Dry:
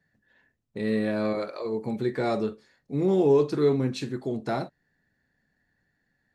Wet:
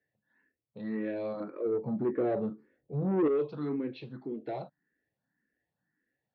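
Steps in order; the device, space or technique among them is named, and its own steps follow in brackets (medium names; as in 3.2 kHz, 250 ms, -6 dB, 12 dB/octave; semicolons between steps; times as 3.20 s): 1.40–3.28 s: tilt shelf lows +10 dB, about 1.1 kHz; barber-pole phaser into a guitar amplifier (barber-pole phaser +1.8 Hz; saturation -19 dBFS, distortion -10 dB; cabinet simulation 84–3400 Hz, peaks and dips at 90 Hz -8 dB, 310 Hz +6 dB, 500 Hz +4 dB); trim -7 dB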